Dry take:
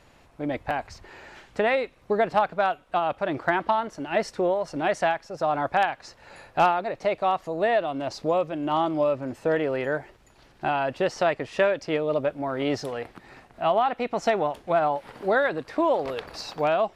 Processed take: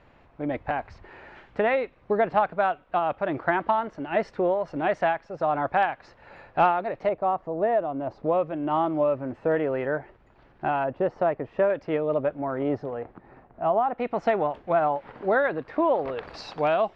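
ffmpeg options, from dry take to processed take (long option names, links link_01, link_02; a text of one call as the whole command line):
ffmpeg -i in.wav -af "asetnsamples=nb_out_samples=441:pad=0,asendcmd='7.09 lowpass f 1100;8.24 lowpass f 1900;10.84 lowpass f 1100;11.7 lowpass f 1800;12.59 lowpass f 1100;13.98 lowpass f 2200;16.23 lowpass f 3900',lowpass=2400" out.wav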